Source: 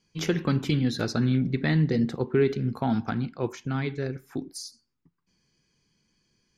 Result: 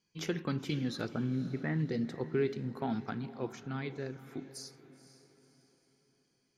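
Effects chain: 1.07–1.78 LPF 1400 Hz -> 2200 Hz 24 dB/oct; low shelf 78 Hz -11.5 dB; diffused feedback echo 0.502 s, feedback 43%, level -15 dB; gain -8 dB

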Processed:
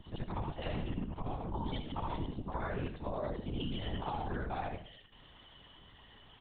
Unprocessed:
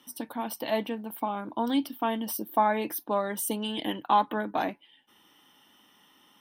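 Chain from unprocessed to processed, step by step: short-time reversal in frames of 0.175 s; notch 1600 Hz, Q 19; gate with hold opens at -55 dBFS; bell 97 Hz +12 dB 1.6 oct; comb 5.3 ms, depth 75%; in parallel at +3 dB: level quantiser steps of 11 dB; on the sum: limiter -17.5 dBFS, peak gain reduction 6.5 dB; compressor 6:1, threshold -34 dBFS, peak gain reduction 11.5 dB; on a send: frequency-shifting echo 98 ms, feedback 37%, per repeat -46 Hz, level -12.5 dB; on the sum: LPC vocoder at 8 kHz whisper; gain -1 dB

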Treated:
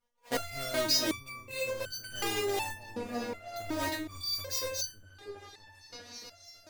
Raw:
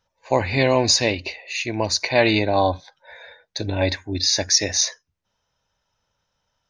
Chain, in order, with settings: half-waves squared off; repeats that get brighter 0.321 s, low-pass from 400 Hz, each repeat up 1 oct, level -6 dB; stepped resonator 2.7 Hz 240–1500 Hz; gain +1 dB

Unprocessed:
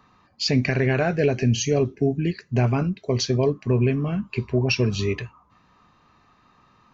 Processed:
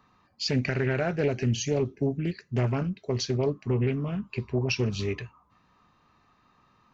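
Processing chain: Doppler distortion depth 0.32 ms; gain -5.5 dB

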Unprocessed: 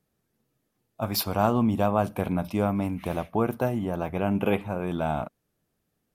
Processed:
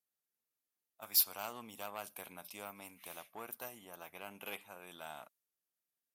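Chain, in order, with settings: tube stage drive 14 dB, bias 0.55; differentiator; mismatched tape noise reduction decoder only; gain +1 dB

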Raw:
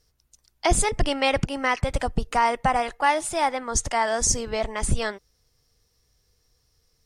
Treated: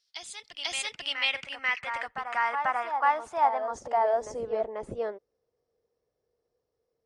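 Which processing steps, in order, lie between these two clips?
band-pass sweep 3800 Hz -> 500 Hz, 0.77–4.66; reverse echo 0.49 s -7.5 dB; gain +1.5 dB

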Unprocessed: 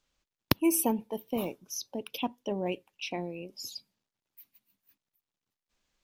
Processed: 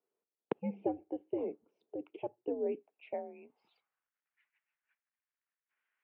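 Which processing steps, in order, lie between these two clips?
mistuned SSB -130 Hz 330–3100 Hz; band-pass sweep 430 Hz -> 1700 Hz, 2.73–4.23; gain +3 dB

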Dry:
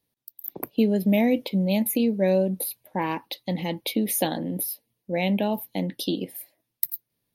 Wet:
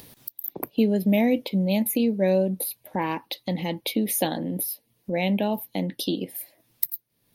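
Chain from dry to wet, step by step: upward compressor, threshold -26 dBFS

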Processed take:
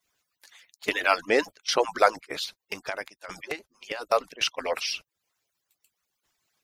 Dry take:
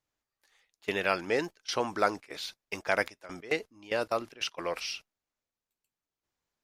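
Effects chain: median-filter separation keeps percussive; 2.44–4.12 compressor 2.5:1, threshold -44 dBFS, peak gain reduction 14.5 dB; mismatched tape noise reduction encoder only; gain +7.5 dB

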